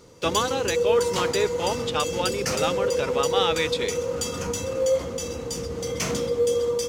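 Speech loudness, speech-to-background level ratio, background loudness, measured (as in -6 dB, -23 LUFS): -27.5 LUFS, -1.5 dB, -26.0 LUFS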